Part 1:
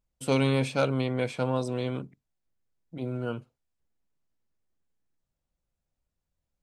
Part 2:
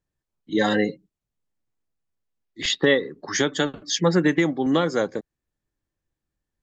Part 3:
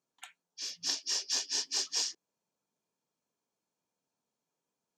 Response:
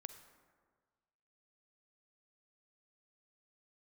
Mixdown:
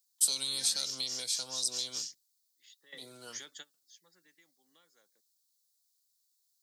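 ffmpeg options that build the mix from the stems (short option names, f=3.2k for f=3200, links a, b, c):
-filter_complex "[0:a]highshelf=f=3.3k:t=q:w=3:g=8.5,acontrast=36,alimiter=limit=-11dB:level=0:latency=1:release=198,volume=1dB,asplit=2[a][b];[1:a]bass=f=250:g=5,treble=f=4k:g=-2,volume=-11.5dB[c];[2:a]volume=-3.5dB[d];[b]apad=whole_len=292127[e];[c][e]sidechaingate=range=-17dB:threshold=-58dB:ratio=16:detection=peak[f];[a][f][d]amix=inputs=3:normalize=0,aderivative,acrossover=split=260|3000[g][h][i];[h]acompressor=threshold=-46dB:ratio=6[j];[g][j][i]amix=inputs=3:normalize=0"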